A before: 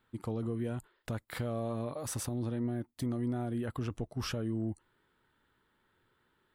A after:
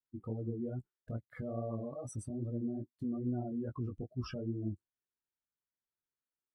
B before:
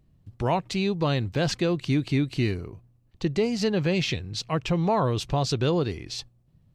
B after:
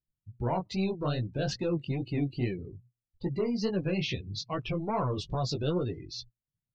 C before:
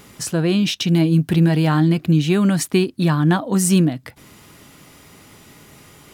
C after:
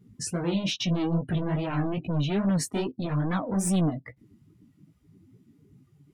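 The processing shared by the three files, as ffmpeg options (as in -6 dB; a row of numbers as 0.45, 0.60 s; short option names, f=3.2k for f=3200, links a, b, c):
-af "asoftclip=type=tanh:threshold=-21dB,flanger=delay=15.5:depth=6.1:speed=2.4,afftdn=nr=29:nf=-39"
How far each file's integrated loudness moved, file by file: -3.5, -6.0, -10.5 LU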